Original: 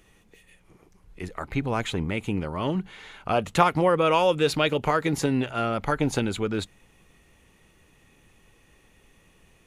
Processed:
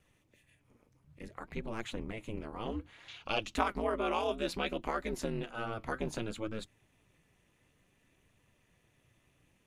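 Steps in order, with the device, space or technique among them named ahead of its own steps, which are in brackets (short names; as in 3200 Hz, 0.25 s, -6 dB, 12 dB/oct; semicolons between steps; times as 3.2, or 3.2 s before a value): alien voice (ring modulator 110 Hz; flange 0.6 Hz, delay 1.3 ms, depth 7.8 ms, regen +74%); 3.08–3.55 band shelf 3900 Hz +13 dB; gain -4.5 dB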